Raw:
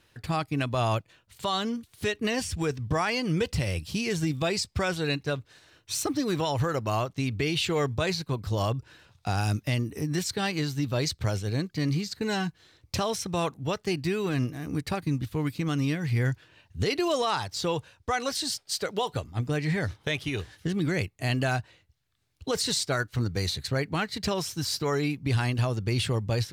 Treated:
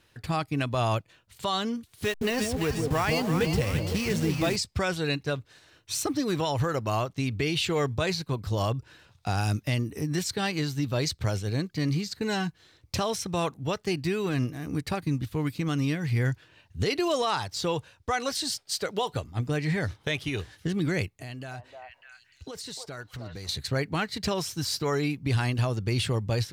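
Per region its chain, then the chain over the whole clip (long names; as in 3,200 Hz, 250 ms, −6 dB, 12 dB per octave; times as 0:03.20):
0:02.04–0:04.56: hold until the input has moved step −36.5 dBFS + delay that swaps between a low-pass and a high-pass 170 ms, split 830 Hz, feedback 65%, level −2.5 dB
0:21.15–0:23.49: downward compressor 4 to 1, threshold −38 dBFS + echo through a band-pass that steps 302 ms, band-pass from 770 Hz, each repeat 1.4 octaves, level −1 dB
whole clip: no processing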